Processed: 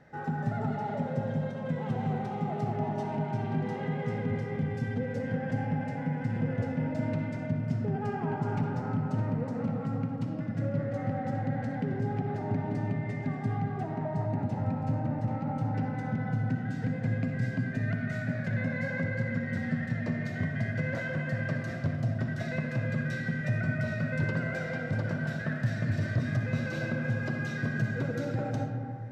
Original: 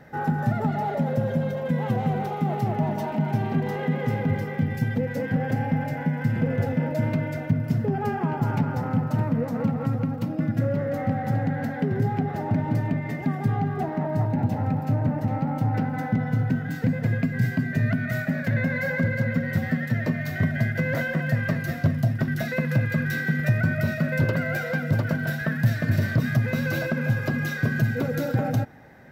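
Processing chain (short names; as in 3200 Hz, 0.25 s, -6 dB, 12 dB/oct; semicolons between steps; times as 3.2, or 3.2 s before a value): LPF 8800 Hz 24 dB/oct; on a send: reverb RT60 2.4 s, pre-delay 20 ms, DRR 3.5 dB; on the sum: gain -8.5 dB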